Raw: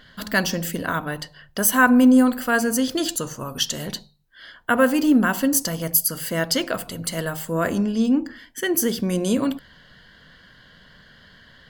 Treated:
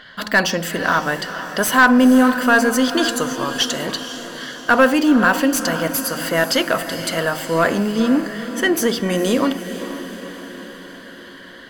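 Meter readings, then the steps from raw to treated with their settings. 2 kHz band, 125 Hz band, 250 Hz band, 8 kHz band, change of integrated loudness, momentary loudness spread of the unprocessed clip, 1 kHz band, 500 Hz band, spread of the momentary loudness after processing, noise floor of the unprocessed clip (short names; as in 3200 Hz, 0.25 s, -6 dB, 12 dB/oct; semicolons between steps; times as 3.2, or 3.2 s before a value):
+7.0 dB, +1.0 dB, +2.5 dB, -0.5 dB, +3.5 dB, 13 LU, +7.0 dB, +6.0 dB, 17 LU, -52 dBFS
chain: overdrive pedal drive 17 dB, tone 2500 Hz, clips at -2 dBFS; diffused feedback echo 0.475 s, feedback 58%, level -11 dB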